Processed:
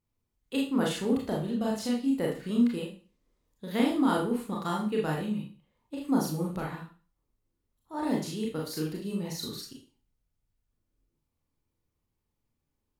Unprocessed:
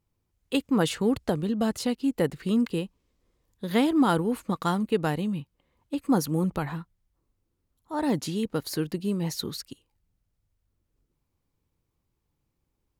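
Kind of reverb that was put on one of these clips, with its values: Schroeder reverb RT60 0.37 s, combs from 26 ms, DRR -2.5 dB; gain -8 dB

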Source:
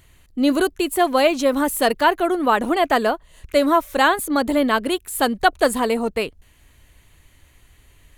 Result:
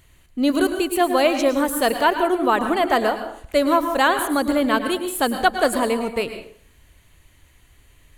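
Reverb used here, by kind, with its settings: plate-style reverb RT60 0.56 s, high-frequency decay 0.8×, pre-delay 95 ms, DRR 8 dB; gain -1.5 dB

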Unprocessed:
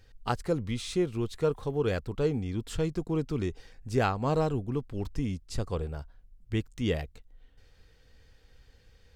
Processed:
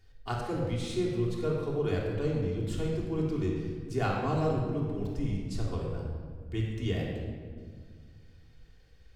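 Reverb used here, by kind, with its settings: shoebox room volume 2300 m³, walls mixed, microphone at 3.3 m; gain -7.5 dB

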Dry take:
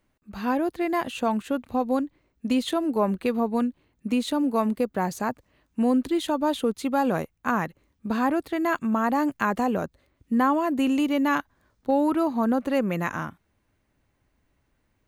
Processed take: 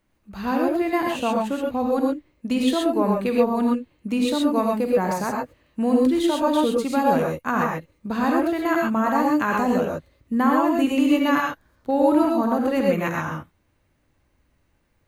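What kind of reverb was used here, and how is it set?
non-linear reverb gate 0.15 s rising, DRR -1 dB

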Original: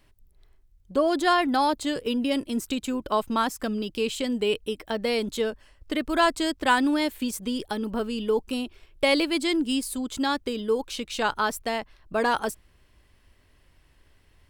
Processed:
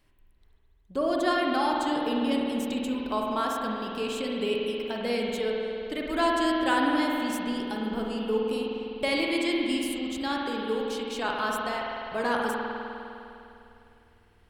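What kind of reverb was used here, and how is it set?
spring tank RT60 2.9 s, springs 50 ms, chirp 25 ms, DRR -2 dB; gain -6 dB

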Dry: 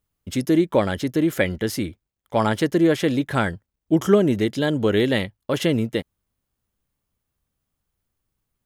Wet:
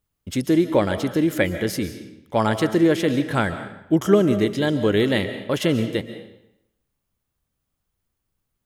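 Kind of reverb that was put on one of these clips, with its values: digital reverb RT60 0.81 s, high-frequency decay 0.9×, pre-delay 0.1 s, DRR 10 dB

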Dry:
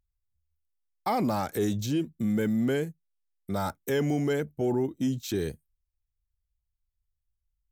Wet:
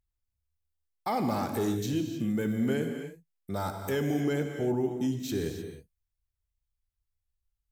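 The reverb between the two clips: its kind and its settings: non-linear reverb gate 0.33 s flat, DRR 4.5 dB; gain -3 dB

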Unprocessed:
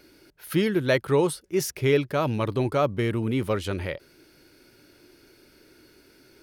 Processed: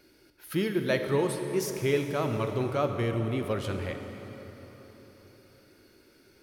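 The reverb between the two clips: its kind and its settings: plate-style reverb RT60 4.3 s, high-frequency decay 0.7×, DRR 5 dB; gain -5.5 dB

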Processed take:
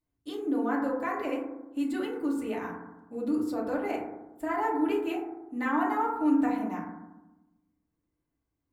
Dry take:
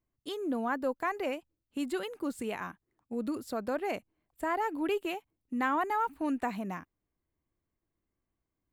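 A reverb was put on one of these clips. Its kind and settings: FDN reverb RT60 1 s, low-frequency decay 1.35×, high-frequency decay 0.25×, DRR -4 dB; gain -5 dB

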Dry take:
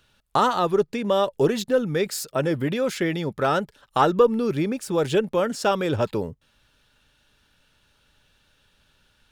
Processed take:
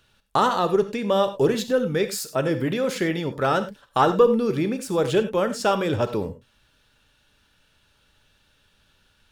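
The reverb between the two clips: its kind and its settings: non-linear reverb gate 0.12 s flat, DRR 9.5 dB

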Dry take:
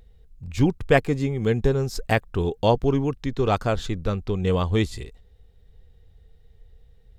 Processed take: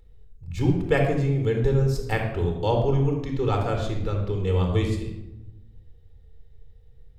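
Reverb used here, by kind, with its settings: shoebox room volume 3400 m³, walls furnished, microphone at 4.2 m; gain -7 dB

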